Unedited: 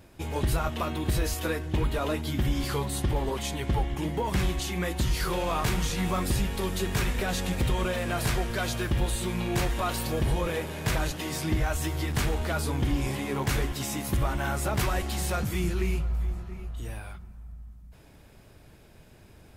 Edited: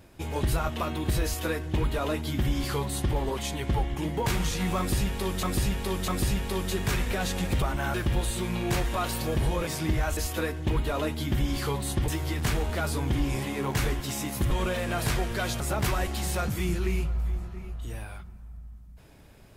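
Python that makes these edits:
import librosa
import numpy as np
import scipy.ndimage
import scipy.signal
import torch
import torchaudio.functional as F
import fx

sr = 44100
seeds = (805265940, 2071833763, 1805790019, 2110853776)

y = fx.edit(x, sr, fx.duplicate(start_s=1.24, length_s=1.91, to_s=11.8),
    fx.cut(start_s=4.26, length_s=1.38),
    fx.repeat(start_s=6.16, length_s=0.65, count=3),
    fx.swap(start_s=7.7, length_s=1.09, other_s=14.23, other_length_s=0.32),
    fx.cut(start_s=10.52, length_s=0.78), tone=tone)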